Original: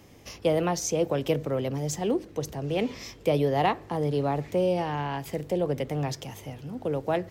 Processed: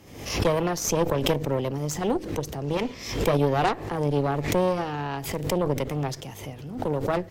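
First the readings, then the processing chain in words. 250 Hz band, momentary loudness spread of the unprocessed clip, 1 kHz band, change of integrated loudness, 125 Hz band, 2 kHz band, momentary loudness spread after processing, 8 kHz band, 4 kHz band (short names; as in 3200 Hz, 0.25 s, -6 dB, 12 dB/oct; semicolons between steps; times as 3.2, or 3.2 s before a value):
+2.0 dB, 8 LU, +2.0 dB, +2.0 dB, +3.0 dB, +4.0 dB, 8 LU, +3.5 dB, +4.5 dB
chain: added harmonics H 4 -11 dB, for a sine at -12 dBFS; backwards sustainer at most 74 dB/s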